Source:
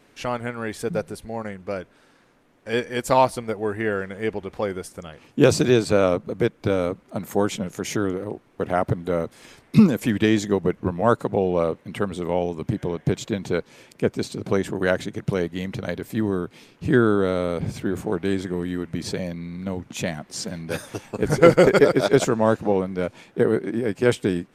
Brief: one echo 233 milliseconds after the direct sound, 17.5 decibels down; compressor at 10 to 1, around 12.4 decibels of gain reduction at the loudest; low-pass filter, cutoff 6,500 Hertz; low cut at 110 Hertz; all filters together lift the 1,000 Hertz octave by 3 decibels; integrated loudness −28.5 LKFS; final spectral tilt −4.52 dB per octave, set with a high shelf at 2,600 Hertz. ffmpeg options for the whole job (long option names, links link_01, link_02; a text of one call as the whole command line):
ffmpeg -i in.wav -af "highpass=110,lowpass=6500,equalizer=frequency=1000:width_type=o:gain=5,highshelf=frequency=2600:gain=-7,acompressor=threshold=-21dB:ratio=10,aecho=1:1:233:0.133,volume=0.5dB" out.wav